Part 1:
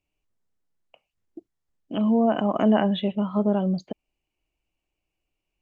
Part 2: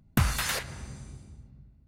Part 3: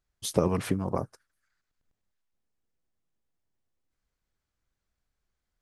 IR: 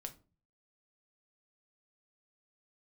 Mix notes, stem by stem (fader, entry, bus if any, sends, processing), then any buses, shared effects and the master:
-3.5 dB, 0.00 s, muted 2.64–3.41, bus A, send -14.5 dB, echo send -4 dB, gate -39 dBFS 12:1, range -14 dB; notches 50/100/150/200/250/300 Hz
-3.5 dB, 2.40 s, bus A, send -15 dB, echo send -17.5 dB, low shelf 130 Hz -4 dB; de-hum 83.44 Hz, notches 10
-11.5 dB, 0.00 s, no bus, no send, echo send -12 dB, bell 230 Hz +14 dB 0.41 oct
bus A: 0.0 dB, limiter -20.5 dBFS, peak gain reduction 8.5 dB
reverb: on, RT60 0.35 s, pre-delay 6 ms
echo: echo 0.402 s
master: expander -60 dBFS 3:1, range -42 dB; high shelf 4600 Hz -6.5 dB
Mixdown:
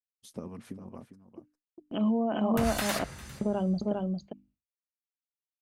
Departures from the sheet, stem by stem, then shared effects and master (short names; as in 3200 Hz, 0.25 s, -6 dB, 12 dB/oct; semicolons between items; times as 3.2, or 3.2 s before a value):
stem 1: send off; stem 3 -11.5 dB -> -19.0 dB; master: missing high shelf 4600 Hz -6.5 dB